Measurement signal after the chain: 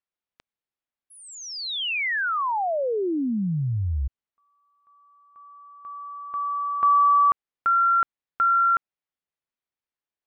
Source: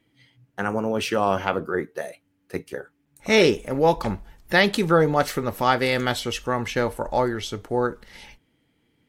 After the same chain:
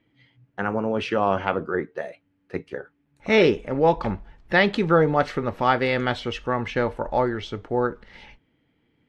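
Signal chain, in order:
low-pass filter 3,100 Hz 12 dB per octave

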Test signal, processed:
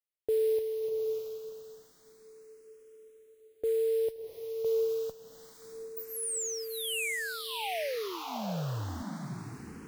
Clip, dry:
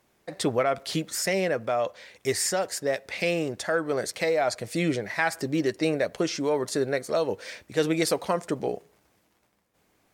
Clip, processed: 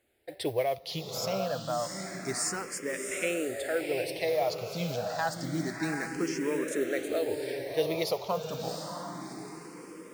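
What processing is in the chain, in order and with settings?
noise that follows the level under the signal 21 dB
feedback delay with all-pass diffusion 711 ms, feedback 43%, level −4.5 dB
frequency shifter mixed with the dry sound +0.28 Hz
level −3.5 dB

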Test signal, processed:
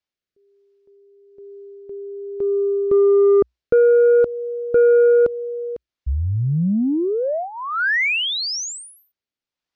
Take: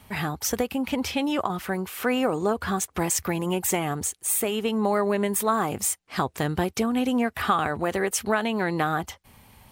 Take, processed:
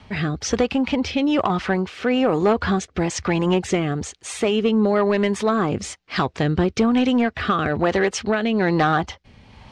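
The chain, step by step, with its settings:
low-pass filter 5,500 Hz 24 dB per octave
parametric band 61 Hz +2.5 dB 0.26 octaves
rotating-speaker cabinet horn 1.1 Hz
in parallel at −5 dB: sine wavefolder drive 6 dB, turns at −11.5 dBFS

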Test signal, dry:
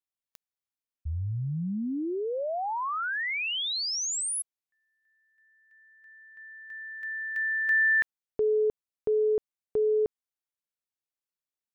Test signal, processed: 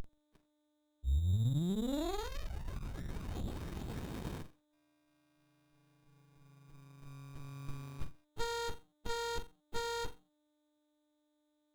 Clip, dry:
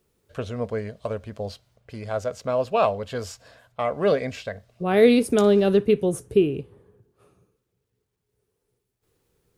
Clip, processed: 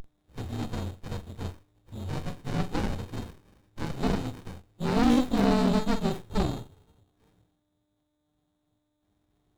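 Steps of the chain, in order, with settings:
partials spread apart or drawn together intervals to 116%
steady tone 3,700 Hz −32 dBFS
on a send: flutter between parallel walls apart 7.5 metres, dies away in 0.25 s
on the sum: windowed peak hold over 65 samples

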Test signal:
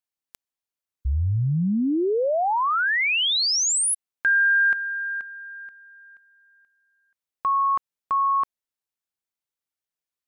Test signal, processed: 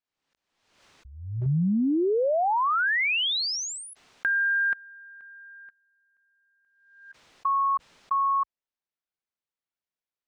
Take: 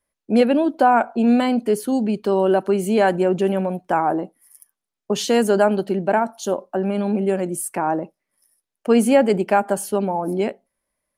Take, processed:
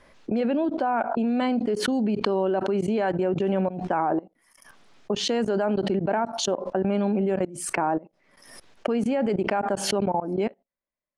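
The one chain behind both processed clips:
parametric band 65 Hz −3.5 dB 1.3 octaves
output level in coarse steps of 23 dB
high-frequency loss of the air 130 metres
background raised ahead of every attack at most 62 dB per second

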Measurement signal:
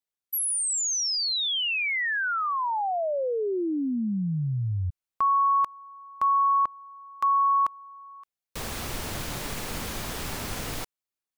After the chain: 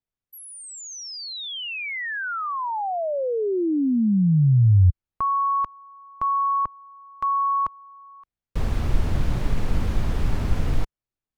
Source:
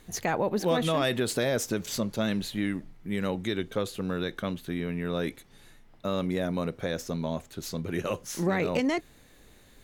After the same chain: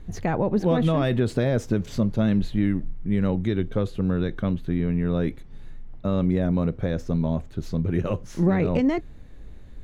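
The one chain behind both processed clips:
RIAA equalisation playback

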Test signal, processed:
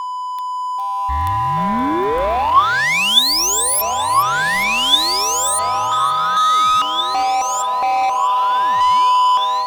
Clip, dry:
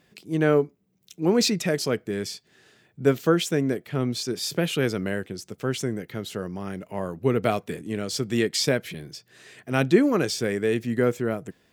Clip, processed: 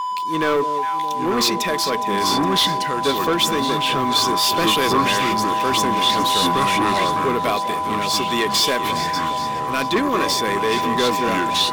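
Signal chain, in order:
high-shelf EQ 3,700 Hz +10 dB
delay that swaps between a low-pass and a high-pass 206 ms, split 870 Hz, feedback 75%, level −13 dB
steady tone 1,000 Hz −28 dBFS
graphic EQ with 10 bands 125 Hz −11 dB, 2,000 Hz +4 dB, 4,000 Hz +3 dB, 8,000 Hz −5 dB
in parallel at −4 dB: dead-zone distortion −40 dBFS
on the sum: delay with pitch and tempo change per echo 785 ms, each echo −4 semitones, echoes 3, each echo −6 dB
automatic gain control gain up to 8.5 dB
leveller curve on the samples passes 3
hollow resonant body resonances 1,100/3,500 Hz, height 13 dB, ringing for 45 ms
level −12 dB

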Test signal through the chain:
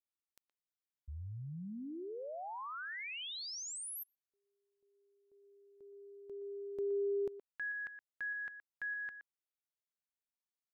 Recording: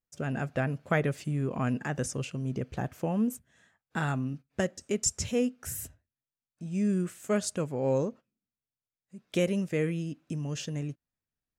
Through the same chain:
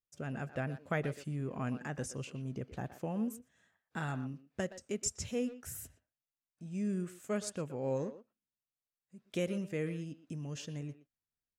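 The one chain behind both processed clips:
far-end echo of a speakerphone 120 ms, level −12 dB
level −7.5 dB

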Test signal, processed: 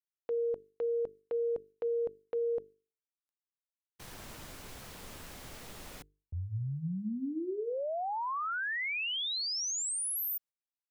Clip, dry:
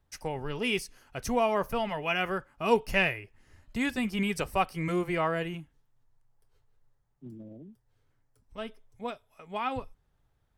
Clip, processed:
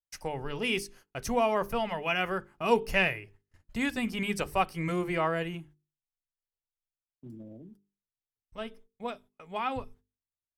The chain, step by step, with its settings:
noise gate −53 dBFS, range −34 dB
mains-hum notches 50/100/150/200/250/300/350/400/450 Hz

